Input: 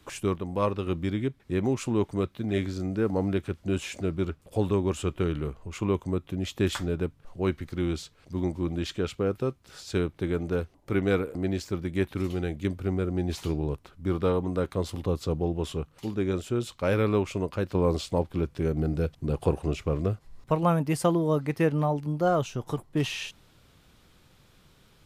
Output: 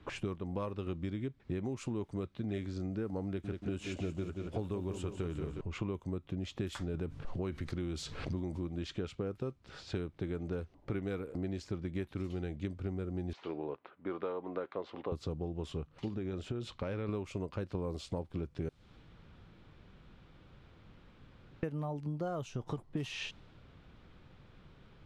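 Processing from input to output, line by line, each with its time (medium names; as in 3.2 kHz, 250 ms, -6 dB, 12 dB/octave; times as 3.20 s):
3.26–5.61 s: bit-crushed delay 180 ms, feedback 55%, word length 9-bit, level -8 dB
6.94–8.67 s: level flattener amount 50%
13.33–15.12 s: band-pass 450–2600 Hz
16.08–17.09 s: compression, threshold -29 dBFS
18.69–21.63 s: room tone
whole clip: level-controlled noise filter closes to 2.7 kHz, open at -20.5 dBFS; bass shelf 430 Hz +3.5 dB; compression 10:1, threshold -33 dBFS; trim -1 dB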